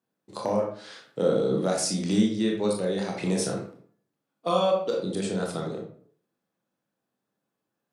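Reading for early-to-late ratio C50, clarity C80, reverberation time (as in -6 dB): 5.0 dB, 9.5 dB, 0.55 s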